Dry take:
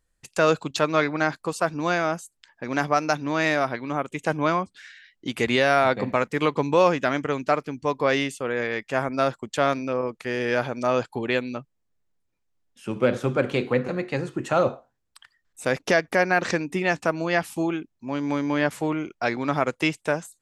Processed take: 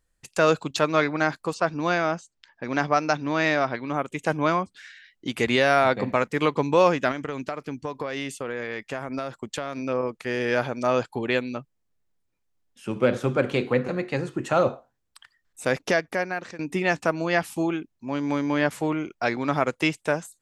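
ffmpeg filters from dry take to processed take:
-filter_complex "[0:a]asettb=1/sr,asplit=3[a][b][c];[a]atrim=end=1.544[d];[b]atrim=start=1.54:end=3.94,asetpts=PTS-STARTPTS,afade=t=in:d=0.004:c=qsin,afade=t=out:st=2.396:d=0.004:c=qsin,lowpass=f=6.2k:w=0.5412,lowpass=f=6.2k:w=1.3066[e];[c]atrim=start=3.936[f];[d][e]acrossfade=d=0.004:c1=hsin:c2=qsin[g];[g][f]acrossfade=d=0.004:c1=qsin:c2=hsin,asettb=1/sr,asplit=3[h][i][j];[h]atrim=end=7.114[k];[i]atrim=start=7.11:end=9.86,asetpts=PTS-STARTPTS,afade=t=in:d=0.004:c=qsin,afade=t=out:st=2.746:d=0.004:c=qsin,acompressor=threshold=-25dB:ratio=12:attack=3.2:release=140:knee=1:detection=peak[l];[j]atrim=start=9.856[m];[k][l]acrossfade=d=0.004:c1=hsin:c2=qsin[n];[n][m]acrossfade=d=0.004:c1=qsin:c2=hsin,asplit=2[o][p];[o]atrim=end=16.59,asetpts=PTS-STARTPTS,afade=t=out:st=15.73:d=0.86:silence=0.1[q];[p]atrim=start=16.59,asetpts=PTS-STARTPTS,afade=t=in:d=0.004:c=hsin:silence=0.1[r];[q][r]concat=n=2:v=0:a=1"

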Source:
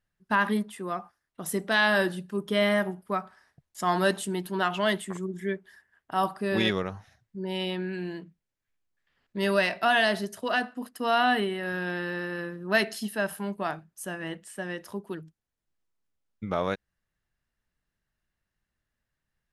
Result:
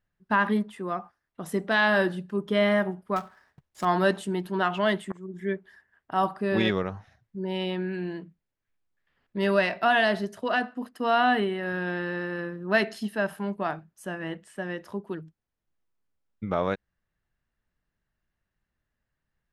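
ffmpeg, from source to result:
-filter_complex "[0:a]asettb=1/sr,asplit=3[a][b][c];[a]atrim=end=3.164[d];[b]atrim=start=3.16:end=3.85,asetpts=PTS-STARTPTS,afade=t=in:d=0.004:c=qsin,afade=t=out:st=0.686:d=0.004:c=qsin,acrusher=bits=2:mode=log:mix=0:aa=0.000001[e];[c]atrim=start=3.846[f];[d][e]acrossfade=d=0.004:c1=hsin:c2=qsin[g];[g][f]acrossfade=d=0.004:c1=qsin:c2=hsin,asplit=2[h][i];[h]atrim=end=5.12,asetpts=PTS-STARTPTS,afade=t=out:st=5.116:d=0.004:c=hsin:silence=0.0944061[j];[i]atrim=start=5.12,asetpts=PTS-STARTPTS,afade=t=in:d=0.4:silence=0.0944061[k];[j][k]concat=n=2:v=0:a=1,lowpass=f=2.4k:p=1,volume=2dB"

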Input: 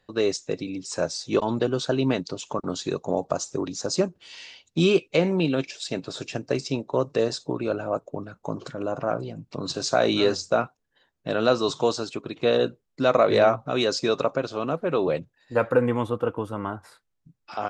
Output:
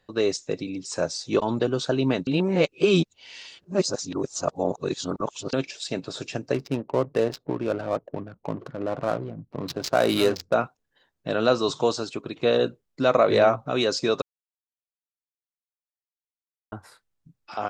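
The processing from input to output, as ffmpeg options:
-filter_complex "[0:a]asettb=1/sr,asplit=3[a][b][c];[a]atrim=end=6.544[d];[b]atrim=start=6.54:end=10.54,asetpts=PTS-STARTPTS,afade=t=in:d=0.004:c=qsin,afade=t=out:st=3.996:d=0.004:c=qsin,adynamicsmooth=sensitivity=5:basefreq=520[e];[c]atrim=start=10.536[f];[d][e]acrossfade=d=0.004:c1=hsin:c2=qsin[g];[g][f]acrossfade=d=0.004:c1=qsin:c2=hsin,asplit=5[h][i][j][k][l];[h]atrim=end=2.272[m];[i]atrim=start=2.268:end=5.532,asetpts=PTS-STARTPTS,areverse[n];[j]atrim=start=5.528:end=14.22,asetpts=PTS-STARTPTS,afade=t=out:st=8.688:d=0.004:c=hsin[o];[k]atrim=start=14.22:end=16.72,asetpts=PTS-STARTPTS,volume=0[p];[l]atrim=start=16.72,asetpts=PTS-STARTPTS,afade=t=in:d=0.004:c=hsin[q];[m][n]acrossfade=d=0.004:c1=hsin:c2=hsin[r];[o][p][q]concat=n=3:v=0:a=1[s];[r][s]acrossfade=d=0.004:c1=hsin:c2=hsin"

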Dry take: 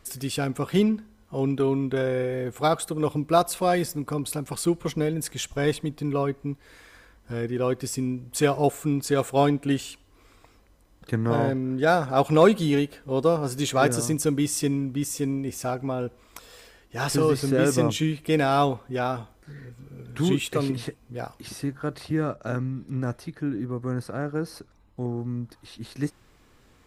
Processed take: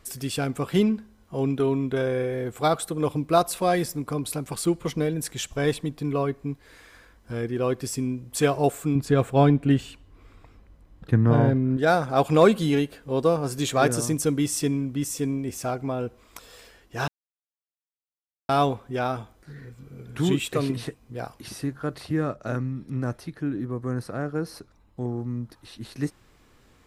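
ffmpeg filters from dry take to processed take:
-filter_complex "[0:a]asettb=1/sr,asplit=3[a][b][c];[a]atrim=end=8.954[d];[b]atrim=start=8.95:end=11.77,asetpts=PTS-STARTPTS,afade=t=in:d=0.004:c=qsin,afade=t=out:st=2.816:d=0.004:c=qsin,bass=f=250:g=8,treble=f=4k:g=-9[e];[c]atrim=start=11.766[f];[d][e]acrossfade=d=0.004:c1=hsin:c2=qsin[g];[g][f]acrossfade=d=0.004:c1=qsin:c2=hsin,asplit=3[h][i][j];[h]atrim=end=17.08,asetpts=PTS-STARTPTS,afade=t=out:st=17.076:d=0.004:c=hsin[k];[i]atrim=start=17.08:end=18.49,asetpts=PTS-STARTPTS,volume=0[l];[j]atrim=start=18.49,asetpts=PTS-STARTPTS,afade=t=in:d=0.004:c=hsin[m];[k][l][m]concat=n=3:v=0:a=1"

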